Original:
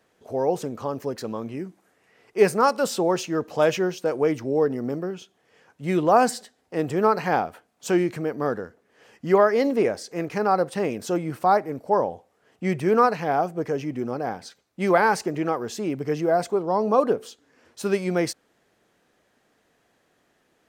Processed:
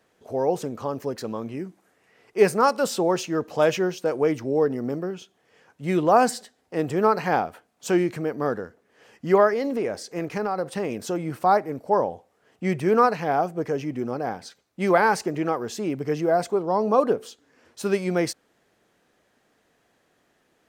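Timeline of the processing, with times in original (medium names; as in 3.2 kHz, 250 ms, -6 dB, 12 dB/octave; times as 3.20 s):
9.53–11.37 s: compression 4:1, threshold -22 dBFS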